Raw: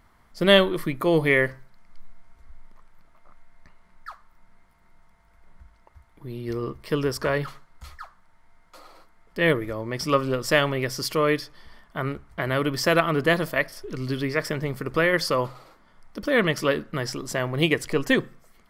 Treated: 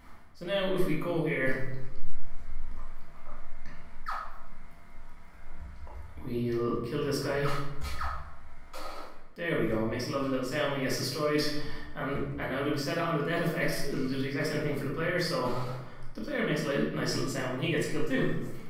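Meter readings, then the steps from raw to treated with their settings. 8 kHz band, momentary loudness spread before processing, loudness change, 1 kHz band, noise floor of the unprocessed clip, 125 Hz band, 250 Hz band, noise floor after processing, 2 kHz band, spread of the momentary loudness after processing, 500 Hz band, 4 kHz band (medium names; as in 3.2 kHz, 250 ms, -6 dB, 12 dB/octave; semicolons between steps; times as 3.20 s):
-5.5 dB, 12 LU, -7.5 dB, -7.0 dB, -59 dBFS, -4.5 dB, -4.5 dB, -45 dBFS, -9.0 dB, 18 LU, -7.0 dB, -8.5 dB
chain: reverse; compression 16:1, threshold -35 dBFS, peak gain reduction 25 dB; reverse; simulated room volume 310 m³, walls mixed, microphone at 2 m; trim +1.5 dB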